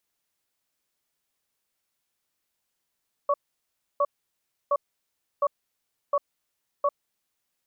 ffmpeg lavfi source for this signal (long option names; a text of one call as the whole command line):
ffmpeg -f lavfi -i "aevalsrc='0.0794*(sin(2*PI*576*t)+sin(2*PI*1120*t))*clip(min(mod(t,0.71),0.05-mod(t,0.71))/0.005,0,1)':duration=3.65:sample_rate=44100" out.wav